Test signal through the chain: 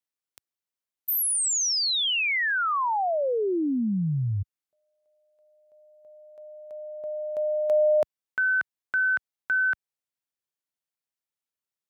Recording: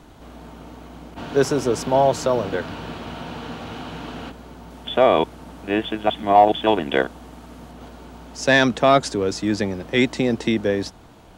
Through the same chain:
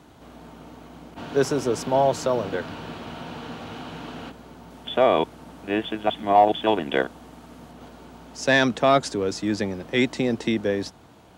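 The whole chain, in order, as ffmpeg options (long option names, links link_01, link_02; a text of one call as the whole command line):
ffmpeg -i in.wav -af "highpass=77,volume=-3dB" out.wav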